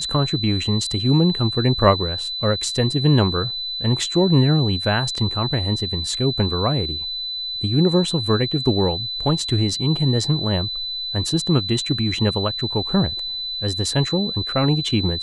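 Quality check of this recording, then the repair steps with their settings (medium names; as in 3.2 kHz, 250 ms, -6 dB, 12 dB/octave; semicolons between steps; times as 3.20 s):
whine 4 kHz -25 dBFS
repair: band-stop 4 kHz, Q 30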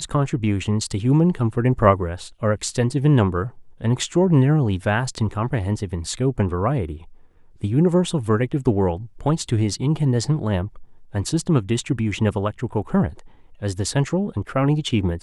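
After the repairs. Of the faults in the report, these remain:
nothing left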